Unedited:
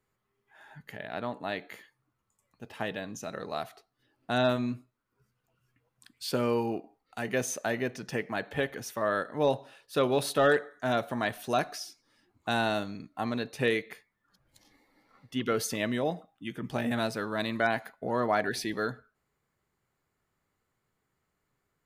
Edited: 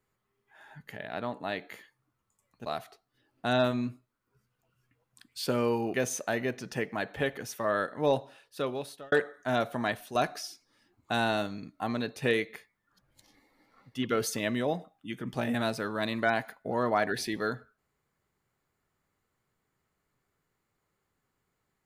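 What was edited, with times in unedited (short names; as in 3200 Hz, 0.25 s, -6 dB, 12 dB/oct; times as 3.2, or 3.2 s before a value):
2.66–3.51 cut
6.79–7.31 cut
9.55–10.49 fade out
11.27–11.52 fade out, to -8.5 dB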